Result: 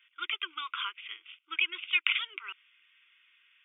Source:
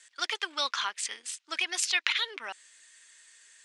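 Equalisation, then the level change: brick-wall FIR band-pass 310–3700 Hz; Butterworth band-stop 680 Hz, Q 0.65; static phaser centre 2.6 kHz, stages 8; +3.5 dB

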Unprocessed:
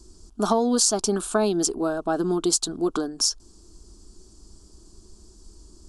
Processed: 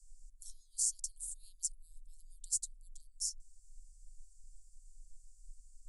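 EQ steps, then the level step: inverse Chebyshev band-stop 150–1700 Hz, stop band 80 dB; distance through air 54 m; peaking EQ 2.8 kHz +6.5 dB 0.77 oct; 0.0 dB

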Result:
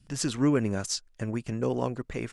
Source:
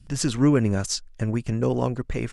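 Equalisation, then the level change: bass shelf 100 Hz -11 dB; -3.5 dB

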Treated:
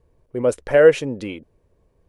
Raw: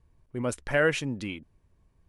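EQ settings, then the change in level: peaking EQ 490 Hz +14 dB 0.97 oct; +1.5 dB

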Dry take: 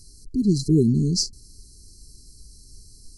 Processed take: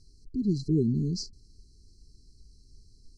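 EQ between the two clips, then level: distance through air 130 m; -7.0 dB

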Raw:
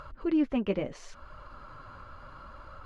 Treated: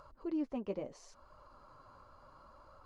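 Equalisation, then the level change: bass shelf 260 Hz -9.5 dB; high-order bell 2.2 kHz -10 dB; -6.0 dB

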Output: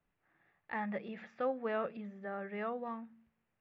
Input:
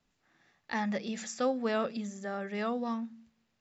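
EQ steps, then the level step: low-pass 2.5 kHz 24 dB/octave; peaking EQ 240 Hz -8 dB 0.32 oct; -4.0 dB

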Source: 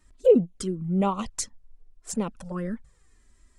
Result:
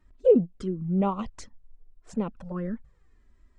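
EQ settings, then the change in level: tape spacing loss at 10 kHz 25 dB; 0.0 dB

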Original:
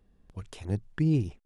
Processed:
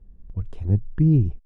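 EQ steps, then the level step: tilt EQ -4.5 dB/octave; -3.5 dB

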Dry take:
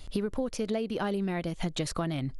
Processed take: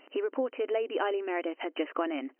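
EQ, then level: brick-wall FIR band-pass 260–3100 Hz; +3.0 dB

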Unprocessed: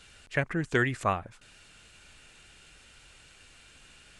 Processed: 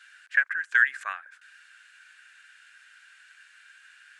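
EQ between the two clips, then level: resonant high-pass 1.6 kHz, resonance Q 9.8; -6.0 dB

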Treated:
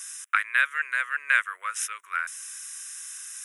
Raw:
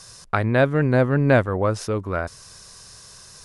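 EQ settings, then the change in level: high-pass 1.2 kHz 24 dB/octave; tilt EQ +3 dB/octave; static phaser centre 1.9 kHz, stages 4; +3.0 dB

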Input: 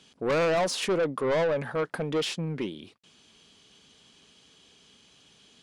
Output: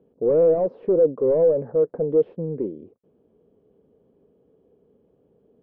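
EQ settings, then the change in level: resonant low-pass 480 Hz, resonance Q 3.7; distance through air 190 m; 0.0 dB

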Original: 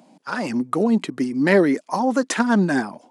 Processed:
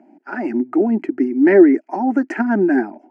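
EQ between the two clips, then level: band-pass 140–2400 Hz; peaking EQ 350 Hz +11 dB 0.68 oct; static phaser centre 740 Hz, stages 8; +1.0 dB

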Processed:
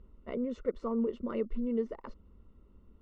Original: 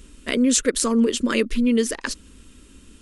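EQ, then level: Savitzky-Golay filter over 65 samples; distance through air 180 m; peaking EQ 280 Hz -12 dB 0.4 oct; -8.5 dB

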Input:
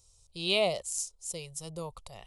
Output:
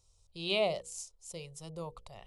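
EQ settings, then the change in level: low-pass 3.3 kHz 6 dB/octave; hum notches 60/120/180/240/300/360/420/480/540 Hz; -2.0 dB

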